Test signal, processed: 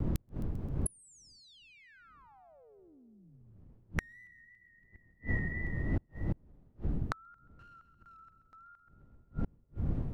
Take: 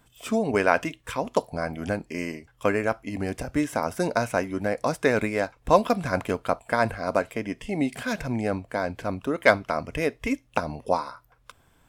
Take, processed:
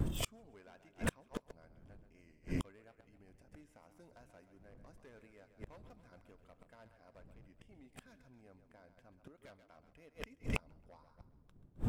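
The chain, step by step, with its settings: wind noise 170 Hz -33 dBFS; low shelf 73 Hz +5.5 dB; in parallel at +1.5 dB: compressor 10:1, threshold -36 dBFS; on the sum: overloaded stage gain 15.5 dB; vibrato 2.9 Hz 60 cents; on a send: split-band echo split 360 Hz, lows 0.347 s, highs 0.132 s, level -10.5 dB; on the sum: flipped gate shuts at -21 dBFS, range -37 dB

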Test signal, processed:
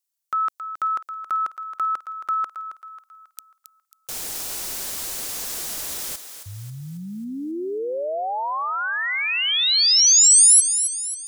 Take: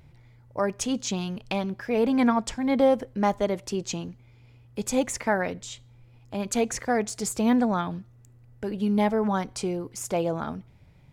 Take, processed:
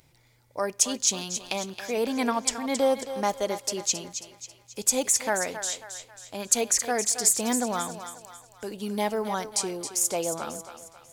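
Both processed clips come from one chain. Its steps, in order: tone controls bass -10 dB, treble +14 dB; on a send: thinning echo 0.271 s, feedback 47%, high-pass 460 Hz, level -9.5 dB; on the sum: gain -2 dB

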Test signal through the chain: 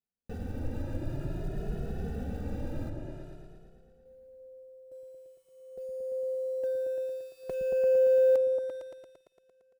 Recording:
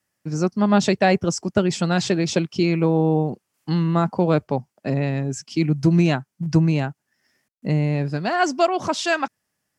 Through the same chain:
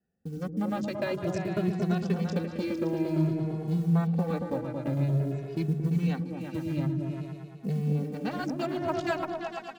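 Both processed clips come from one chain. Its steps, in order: Wiener smoothing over 41 samples; in parallel at 0 dB: limiter -12.5 dBFS; on the sum: compressor 2:1, threshold -36 dBFS; short-mantissa float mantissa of 4-bit; on a send: repeats that get brighter 0.114 s, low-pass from 200 Hz, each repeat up 2 oct, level 0 dB; on the sum: endless flanger 2.3 ms +0.52 Hz

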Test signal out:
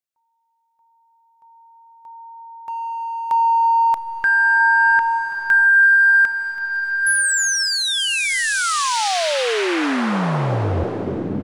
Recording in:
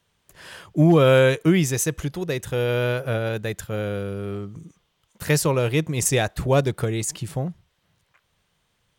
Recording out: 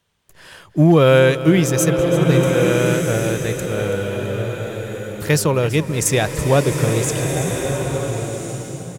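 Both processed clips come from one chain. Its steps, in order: in parallel at -6 dB: backlash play -27 dBFS; on the sum: feedback echo 0.331 s, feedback 55%, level -15 dB; bloom reverb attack 1.45 s, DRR 4 dB

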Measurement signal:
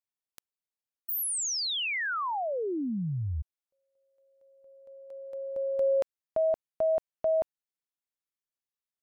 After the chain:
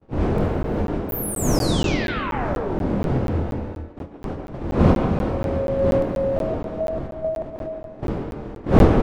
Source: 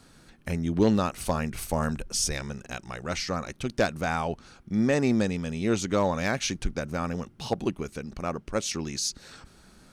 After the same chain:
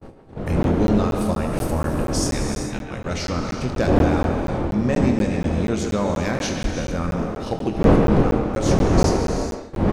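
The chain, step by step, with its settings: wind noise 450 Hz -25 dBFS; on a send: early reflections 24 ms -9.5 dB, 74 ms -13.5 dB; on the sum: gate -33 dBFS, range -47 dB; speakerphone echo 0.14 s, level -7 dB; non-linear reverb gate 0.46 s flat, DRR 4.5 dB; in parallel at +0.5 dB: compressor, threshold -27 dBFS; on the sum: low shelf 330 Hz +5 dB; crackling interface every 0.24 s, samples 512, zero, from 0.63; gain -4.5 dB

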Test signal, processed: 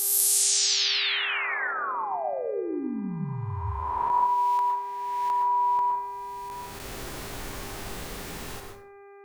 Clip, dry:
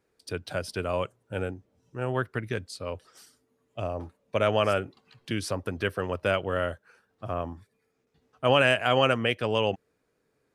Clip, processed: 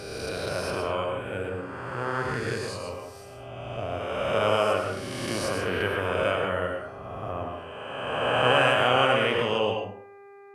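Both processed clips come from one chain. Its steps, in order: spectral swells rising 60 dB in 2.15 s; plate-style reverb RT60 0.57 s, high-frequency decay 0.55×, pre-delay 0.1 s, DRR 2 dB; buzz 400 Hz, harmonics 6, -44 dBFS -7 dB/oct; gain -4.5 dB

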